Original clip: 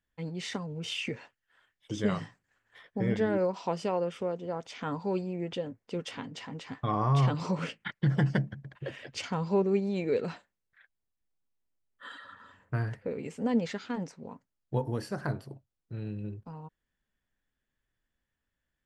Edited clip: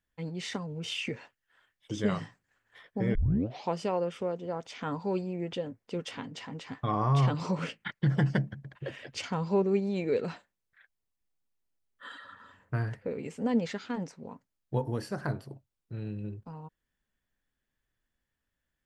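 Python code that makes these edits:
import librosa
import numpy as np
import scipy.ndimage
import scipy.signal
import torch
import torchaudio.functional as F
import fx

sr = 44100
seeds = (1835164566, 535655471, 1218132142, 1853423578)

y = fx.edit(x, sr, fx.tape_start(start_s=3.15, length_s=0.54), tone=tone)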